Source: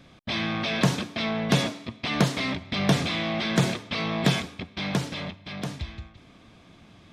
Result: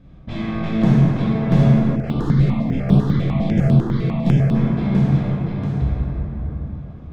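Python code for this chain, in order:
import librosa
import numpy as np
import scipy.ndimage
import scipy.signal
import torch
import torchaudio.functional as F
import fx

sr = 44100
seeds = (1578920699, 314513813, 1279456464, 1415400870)

y = fx.tracing_dist(x, sr, depth_ms=0.053)
y = fx.tilt_eq(y, sr, slope=-4.0)
y = fx.rev_plate(y, sr, seeds[0], rt60_s=4.5, hf_ratio=0.3, predelay_ms=0, drr_db=-7.5)
y = fx.phaser_held(y, sr, hz=10.0, low_hz=240.0, high_hz=6600.0, at=(1.95, 4.54), fade=0.02)
y = y * librosa.db_to_amplitude(-7.5)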